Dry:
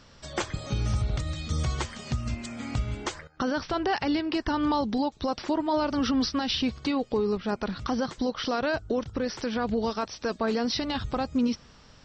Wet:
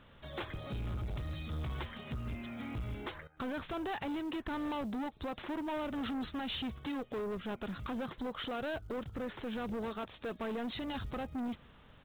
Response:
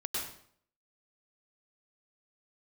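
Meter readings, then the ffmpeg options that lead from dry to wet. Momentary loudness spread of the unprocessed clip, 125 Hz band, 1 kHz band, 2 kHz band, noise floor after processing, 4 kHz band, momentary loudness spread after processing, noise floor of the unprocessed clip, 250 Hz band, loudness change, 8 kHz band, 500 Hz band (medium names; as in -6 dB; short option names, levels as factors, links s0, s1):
7 LU, -10.0 dB, -11.0 dB, -9.0 dB, -59 dBFS, -11.5 dB, 5 LU, -54 dBFS, -10.5 dB, -10.5 dB, under -20 dB, -11.0 dB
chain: -af "aresample=8000,asoftclip=type=tanh:threshold=0.0316,aresample=44100,acrusher=bits=8:mode=log:mix=0:aa=0.000001,volume=0.596"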